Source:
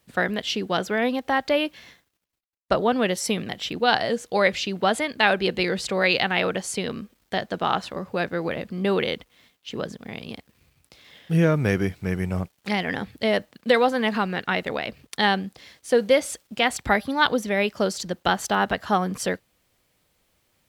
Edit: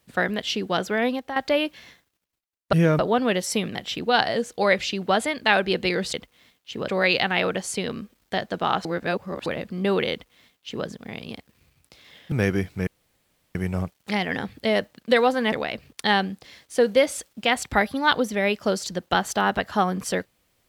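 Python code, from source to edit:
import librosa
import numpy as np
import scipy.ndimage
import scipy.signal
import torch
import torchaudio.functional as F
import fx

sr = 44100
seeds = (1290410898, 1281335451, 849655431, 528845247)

y = fx.edit(x, sr, fx.fade_out_to(start_s=1.09, length_s=0.27, floor_db=-11.5),
    fx.reverse_span(start_s=7.85, length_s=0.61),
    fx.duplicate(start_s=9.12, length_s=0.74, to_s=5.88),
    fx.move(start_s=11.32, length_s=0.26, to_s=2.73),
    fx.insert_room_tone(at_s=12.13, length_s=0.68),
    fx.cut(start_s=14.1, length_s=0.56), tone=tone)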